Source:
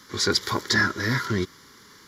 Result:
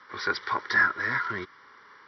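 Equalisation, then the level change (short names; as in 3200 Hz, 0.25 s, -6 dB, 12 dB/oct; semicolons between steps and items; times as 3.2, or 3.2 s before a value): dynamic EQ 590 Hz, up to -5 dB, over -41 dBFS, Q 1; brick-wall FIR low-pass 5900 Hz; three-band isolator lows -20 dB, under 540 Hz, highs -21 dB, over 2200 Hz; +4.0 dB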